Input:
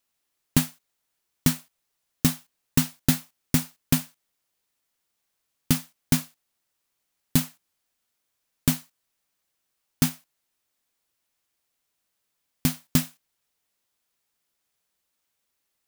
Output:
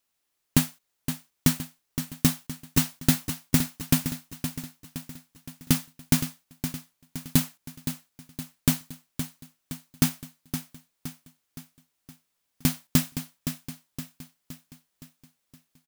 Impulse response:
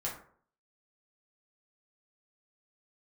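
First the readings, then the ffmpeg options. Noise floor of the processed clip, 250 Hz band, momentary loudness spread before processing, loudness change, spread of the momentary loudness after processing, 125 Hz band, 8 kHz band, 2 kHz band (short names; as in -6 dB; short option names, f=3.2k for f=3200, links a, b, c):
-78 dBFS, +0.5 dB, 9 LU, -1.5 dB, 18 LU, +0.5 dB, +0.5 dB, +0.5 dB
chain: -af "aecho=1:1:517|1034|1551|2068|2585|3102:0.335|0.171|0.0871|0.0444|0.0227|0.0116"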